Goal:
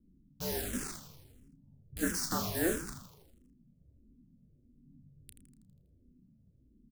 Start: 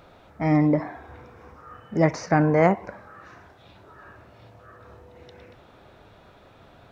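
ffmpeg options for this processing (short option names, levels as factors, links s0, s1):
-filter_complex "[0:a]highpass=60,equalizer=f=260:t=o:w=1.3:g=-6,afreqshift=-350,acrossover=split=260[s0][s1];[s0]acompressor=threshold=0.0126:ratio=6[s2];[s1]acrusher=bits=5:mix=0:aa=0.000001[s3];[s2][s3]amix=inputs=2:normalize=0,bass=f=250:g=6,treble=f=4000:g=15,asplit=2[s4][s5];[s5]adelay=32,volume=0.376[s6];[s4][s6]amix=inputs=2:normalize=0,asplit=8[s7][s8][s9][s10][s11][s12][s13][s14];[s8]adelay=81,afreqshift=-100,volume=0.316[s15];[s9]adelay=162,afreqshift=-200,volume=0.186[s16];[s10]adelay=243,afreqshift=-300,volume=0.11[s17];[s11]adelay=324,afreqshift=-400,volume=0.0653[s18];[s12]adelay=405,afreqshift=-500,volume=0.0385[s19];[s13]adelay=486,afreqshift=-600,volume=0.0226[s20];[s14]adelay=567,afreqshift=-700,volume=0.0133[s21];[s7][s15][s16][s17][s18][s19][s20][s21]amix=inputs=8:normalize=0,asplit=2[s22][s23];[s23]afreqshift=-1.5[s24];[s22][s24]amix=inputs=2:normalize=1,volume=0.422"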